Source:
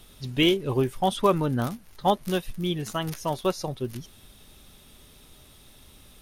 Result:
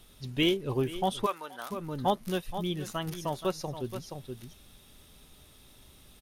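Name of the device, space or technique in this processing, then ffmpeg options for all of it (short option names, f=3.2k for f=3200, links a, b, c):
ducked delay: -filter_complex "[0:a]asplit=3[a][b][c];[b]adelay=475,volume=-5dB[d];[c]apad=whole_len=294900[e];[d][e]sidechaincompress=threshold=-35dB:ratio=8:attack=36:release=280[f];[a][f]amix=inputs=2:normalize=0,asplit=3[g][h][i];[g]afade=t=out:st=1.25:d=0.02[j];[h]highpass=880,afade=t=in:st=1.25:d=0.02,afade=t=out:st=1.7:d=0.02[k];[i]afade=t=in:st=1.7:d=0.02[l];[j][k][l]amix=inputs=3:normalize=0,volume=-5dB"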